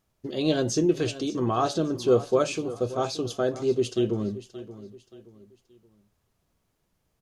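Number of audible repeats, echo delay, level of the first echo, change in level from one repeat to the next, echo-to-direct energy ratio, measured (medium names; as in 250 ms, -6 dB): 3, 576 ms, -15.5 dB, -9.0 dB, -15.0 dB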